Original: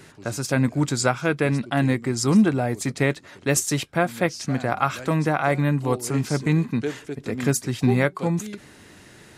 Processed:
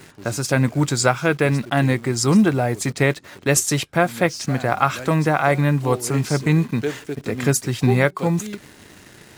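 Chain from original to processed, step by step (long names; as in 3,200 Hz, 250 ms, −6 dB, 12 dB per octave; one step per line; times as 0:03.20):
dynamic equaliser 250 Hz, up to −4 dB, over −33 dBFS, Q 2.5
in parallel at −4.5 dB: bit reduction 7 bits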